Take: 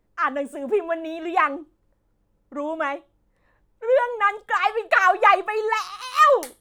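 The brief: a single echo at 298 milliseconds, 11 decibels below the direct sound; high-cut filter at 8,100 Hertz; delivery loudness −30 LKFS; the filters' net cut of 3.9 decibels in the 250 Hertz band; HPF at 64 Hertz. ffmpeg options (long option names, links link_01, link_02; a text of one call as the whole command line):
ffmpeg -i in.wav -af "highpass=64,lowpass=8100,equalizer=frequency=250:width_type=o:gain=-5.5,aecho=1:1:298:0.282,volume=-8.5dB" out.wav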